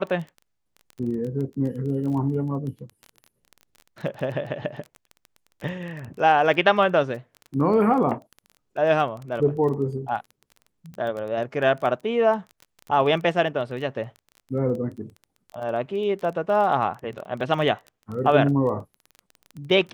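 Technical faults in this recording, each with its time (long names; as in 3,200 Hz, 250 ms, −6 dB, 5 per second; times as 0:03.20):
surface crackle 16 per second −31 dBFS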